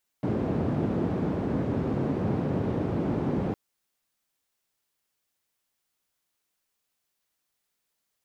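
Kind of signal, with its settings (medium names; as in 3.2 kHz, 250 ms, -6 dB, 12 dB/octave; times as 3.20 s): noise band 110–280 Hz, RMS -27.5 dBFS 3.31 s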